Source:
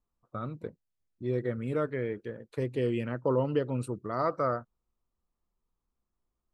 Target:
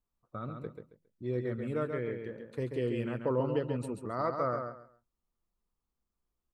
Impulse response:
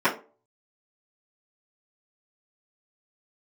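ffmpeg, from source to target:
-af "aecho=1:1:136|272|408:0.501|0.115|0.0265,volume=0.668"

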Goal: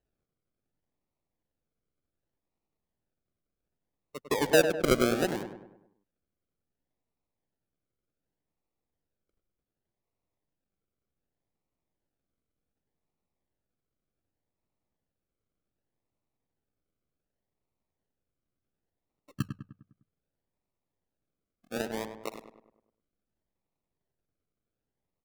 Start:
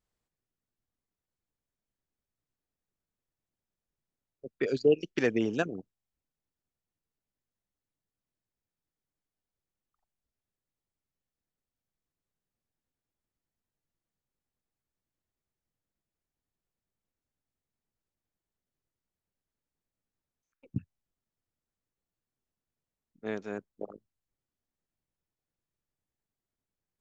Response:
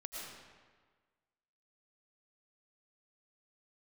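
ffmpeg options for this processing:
-filter_complex "[0:a]acrusher=samples=41:mix=1:aa=0.000001:lfo=1:lforange=24.6:lforate=0.62,asetrate=47187,aresample=44100,asplit=2[s0][s1];[s1]adelay=101,lowpass=f=2000:p=1,volume=0.422,asplit=2[s2][s3];[s3]adelay=101,lowpass=f=2000:p=1,volume=0.5,asplit=2[s4][s5];[s5]adelay=101,lowpass=f=2000:p=1,volume=0.5,asplit=2[s6][s7];[s7]adelay=101,lowpass=f=2000:p=1,volume=0.5,asplit=2[s8][s9];[s9]adelay=101,lowpass=f=2000:p=1,volume=0.5,asplit=2[s10][s11];[s11]adelay=101,lowpass=f=2000:p=1,volume=0.5[s12];[s0][s2][s4][s6][s8][s10][s12]amix=inputs=7:normalize=0,volume=1.19"

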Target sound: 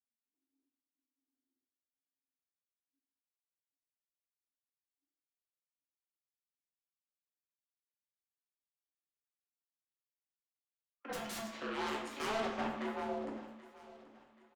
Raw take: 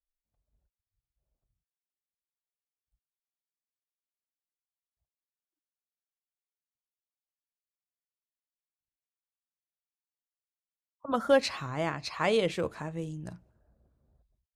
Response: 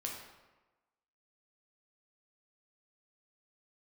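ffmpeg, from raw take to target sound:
-filter_complex "[0:a]lowpass=2900,lowshelf=f=300:g=6.5,acompressor=threshold=0.0355:ratio=2.5,aeval=exprs='0.126*(cos(1*acos(clip(val(0)/0.126,-1,1)))-cos(1*PI/2))+0.0355*(cos(6*acos(clip(val(0)/0.126,-1,1)))-cos(6*PI/2))+0.02*(cos(7*acos(clip(val(0)/0.126,-1,1)))-cos(7*PI/2))':c=same,afreqshift=220,asettb=1/sr,asplit=3[s0][s1][s2];[s0]atrim=end=11.124[s3];[s1]atrim=start=11.12:end=11.62,asetpts=PTS-STARTPTS,afade=t=in:d=0.004:c=qsin,afade=t=out:st=0.496:d=0.004:c=qsin,aeval=exprs='0.0158*(abs(mod(val(0)/0.0158+3,4)-2)-1)':c=same[s4];[s2]atrim=start=11.616[s5];[s3][s4]acrossfade=d=0.004:c1=hsin:c2=qsin[s6];[s6][s5]acrossfade=d=0.004:c1=qsin:c2=hsin,flanger=delay=5.8:depth=3.9:regen=-54:speed=0.18:shape=sinusoidal,asoftclip=type=tanh:threshold=0.0168,aecho=1:1:781|1562|2343:0.133|0.0493|0.0183[s7];[1:a]atrim=start_sample=2205,asetrate=61740,aresample=44100[s8];[s7][s8]afir=irnorm=-1:irlink=0,volume=2"

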